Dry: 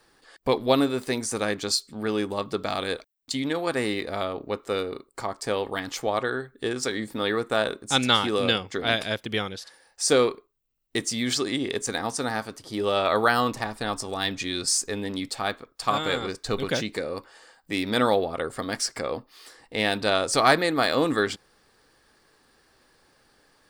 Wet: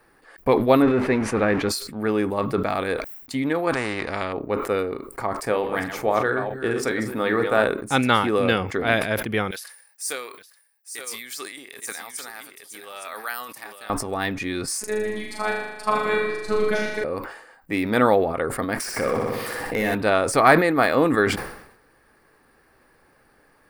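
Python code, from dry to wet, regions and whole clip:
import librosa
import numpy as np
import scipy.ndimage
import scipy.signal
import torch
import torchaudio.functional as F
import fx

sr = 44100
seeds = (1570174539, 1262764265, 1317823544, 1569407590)

y = fx.chain(x, sr, fx.zero_step(step_db=-28.0),
    fx.lowpass(hz=3100.0, slope=12), at=(0.82, 1.69))
y = fx.chain(y, sr, fx.lowpass(hz=6700.0, slope=24),
    fx.spectral_comp(ratio=2.0), at=(3.73, 4.33))
y = fx.chain(y, sr, fx.reverse_delay(ms=217, wet_db=-8.5),
    fx.hum_notches(base_hz=50, count=9),
    fx.doubler(ms=44.0, db=-13.0), at=(5.41, 7.65))
y = fx.chain(y, sr, fx.differentiator(),
    fx.echo_single(ms=864, db=-7.5),
    fx.sustainer(db_per_s=93.0), at=(9.51, 13.9))
y = fx.chain(y, sr, fx.lowpass(hz=11000.0, slope=12),
    fx.robotise(hz=213.0),
    fx.room_flutter(wall_m=6.8, rt60_s=1.1), at=(14.8, 17.04))
y = fx.chain(y, sr, fx.overload_stage(gain_db=23.5),
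    fx.room_flutter(wall_m=10.5, rt60_s=0.77),
    fx.env_flatten(amount_pct=70), at=(18.8, 19.95))
y = fx.band_shelf(y, sr, hz=5000.0, db=-11.5, octaves=1.7)
y = fx.sustainer(y, sr, db_per_s=74.0)
y = F.gain(torch.from_numpy(y), 4.0).numpy()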